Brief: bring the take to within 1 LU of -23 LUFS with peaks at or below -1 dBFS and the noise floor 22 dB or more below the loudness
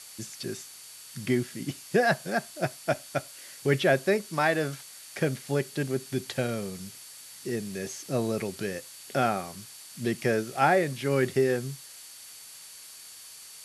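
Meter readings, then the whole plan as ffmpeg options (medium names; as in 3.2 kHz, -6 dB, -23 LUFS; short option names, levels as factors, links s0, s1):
steady tone 4.5 kHz; tone level -54 dBFS; noise floor -47 dBFS; noise floor target -51 dBFS; loudness -29.0 LUFS; peak level -8.0 dBFS; loudness target -23.0 LUFS
-> -af "bandreject=f=4500:w=30"
-af "afftdn=nr=6:nf=-47"
-af "volume=2"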